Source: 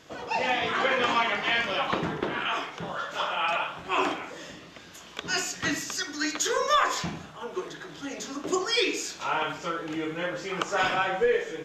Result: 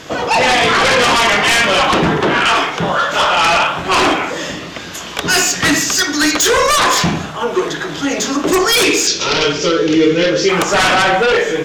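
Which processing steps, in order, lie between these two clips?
in parallel at -5 dB: sine folder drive 15 dB, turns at -10 dBFS; 9.07–10.49 on the sum: EQ curve 280 Hz 0 dB, 430 Hz +8 dB, 770 Hz -12 dB, 5700 Hz +8 dB, 11000 Hz -20 dB; gain +4 dB

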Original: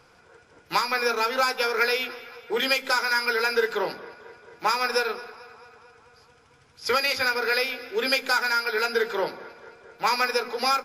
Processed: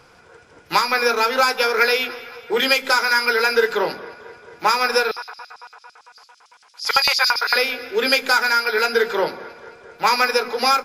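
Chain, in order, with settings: 5.11–7.56 LFO high-pass square 8.9 Hz 910–4700 Hz; gain +6 dB

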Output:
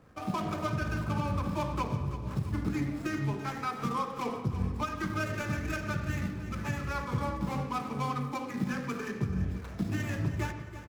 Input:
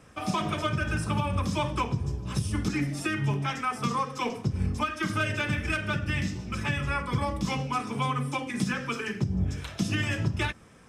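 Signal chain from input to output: median filter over 15 samples; feedback echo 0.335 s, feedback 40%, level -12.5 dB; reverb RT60 1.1 s, pre-delay 58 ms, DRR 8.5 dB; gain -3.5 dB

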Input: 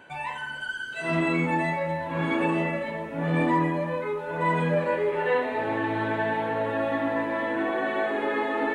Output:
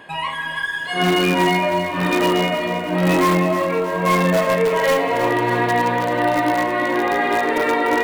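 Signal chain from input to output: in parallel at -9 dB: wrapped overs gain 18 dB; on the sum: speed mistake 44.1 kHz file played as 48 kHz; lo-fi delay 0.316 s, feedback 55%, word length 9-bit, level -9.5 dB; gain +5.5 dB

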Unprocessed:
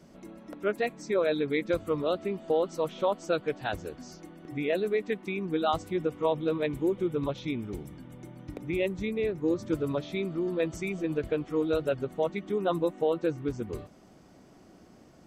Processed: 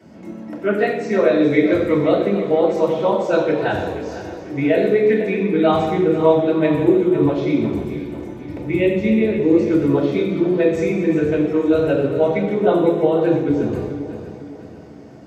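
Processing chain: regenerating reverse delay 0.249 s, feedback 64%, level -11 dB; reverb RT60 1.0 s, pre-delay 3 ms, DRR -3.5 dB; gain -2.5 dB

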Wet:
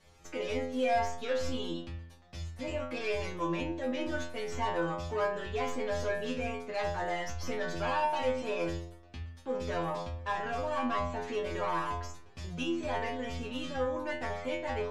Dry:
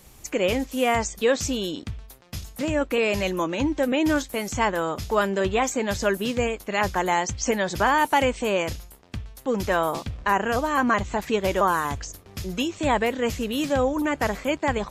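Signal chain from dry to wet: tracing distortion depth 0.13 ms; high shelf 9300 Hz -5.5 dB; notches 50/100/150/200/250 Hz; in parallel at +2 dB: limiter -17.5 dBFS, peak gain reduction 9 dB; on the sum: soft clip -12 dBFS, distortion -16 dB; air absorption 75 m; metallic resonator 83 Hz, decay 0.76 s, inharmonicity 0.002

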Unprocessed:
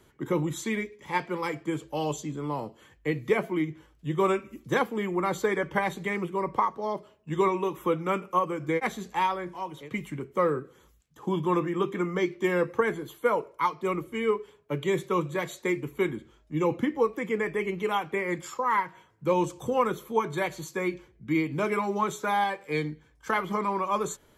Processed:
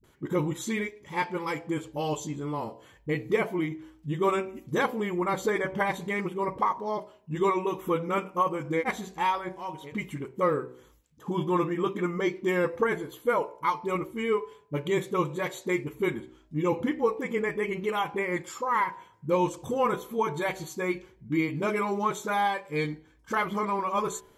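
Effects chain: de-hum 63.05 Hz, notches 16; dispersion highs, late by 40 ms, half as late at 330 Hz

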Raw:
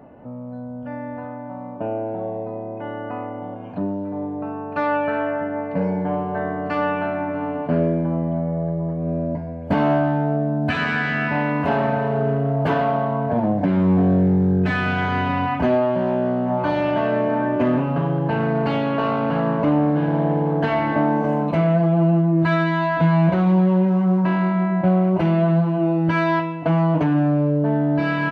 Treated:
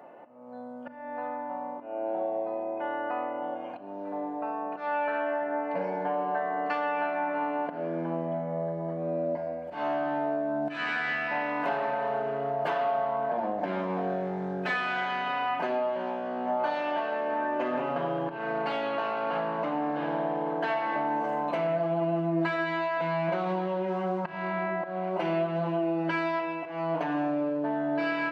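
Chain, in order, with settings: HPF 510 Hz 12 dB/oct; auto swell 0.327 s; compressor, threshold -27 dBFS, peak gain reduction 9 dB; reverb RT60 2.0 s, pre-delay 6 ms, DRR 7.5 dB

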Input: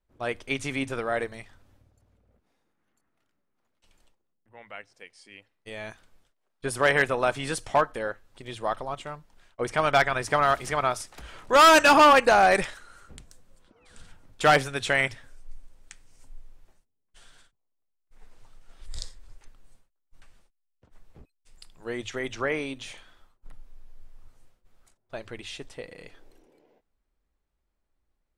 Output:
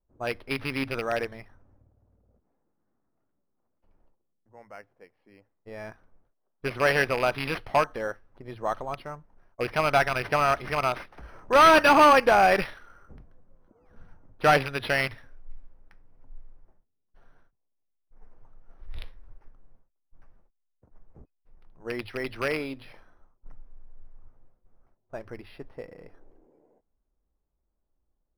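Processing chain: rattling part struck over -34 dBFS, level -18 dBFS; low-pass opened by the level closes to 960 Hz, open at -22 dBFS; decimation joined by straight lines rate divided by 6×

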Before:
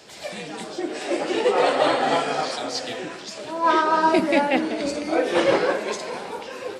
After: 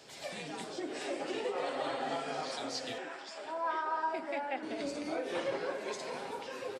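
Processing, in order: comb 7.4 ms, depth 33%; compressor 3:1, threshold -27 dBFS, peak gain reduction 11 dB; 2.98–4.63 speaker cabinet 390–8000 Hz, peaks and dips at 440 Hz -4 dB, 810 Hz +5 dB, 1500 Hz +4 dB, 2800 Hz -3 dB, 4100 Hz -7 dB, 6300 Hz -9 dB; gain -8 dB

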